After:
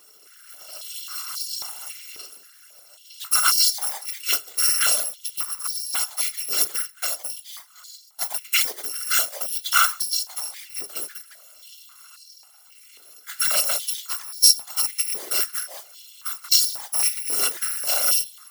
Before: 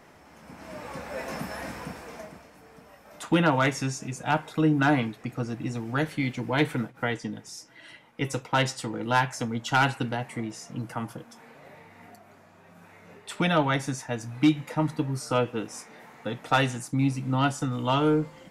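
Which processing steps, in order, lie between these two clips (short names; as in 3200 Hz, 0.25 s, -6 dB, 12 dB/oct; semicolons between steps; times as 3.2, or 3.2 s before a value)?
FFT order left unsorted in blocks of 256 samples; notch 2600 Hz, Q 5.5; whisperiser; stepped high-pass 3.7 Hz 410–4600 Hz; gain +2 dB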